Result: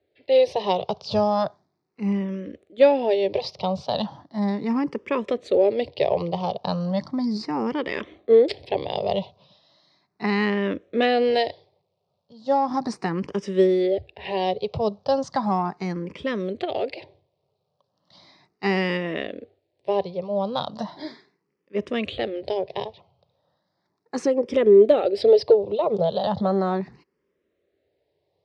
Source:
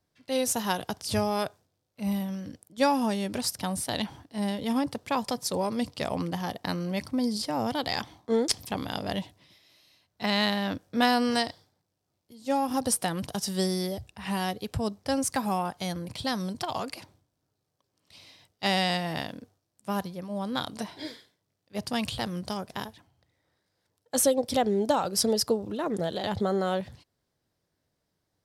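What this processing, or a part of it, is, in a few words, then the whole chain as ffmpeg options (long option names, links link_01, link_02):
barber-pole phaser into a guitar amplifier: -filter_complex "[0:a]asplit=2[link_01][link_02];[link_02]afreqshift=0.36[link_03];[link_01][link_03]amix=inputs=2:normalize=1,asoftclip=type=tanh:threshold=-17dB,highpass=100,equalizer=frequency=110:width_type=q:width=4:gain=-7,equalizer=frequency=260:width_type=q:width=4:gain=-5,equalizer=frequency=400:width_type=q:width=4:gain=9,equalizer=frequency=570:width_type=q:width=4:gain=6,equalizer=frequency=1500:width_type=q:width=4:gain=-8,equalizer=frequency=3200:width_type=q:width=4:gain=-4,lowpass=frequency=4100:width=0.5412,lowpass=frequency=4100:width=1.3066,volume=7.5dB"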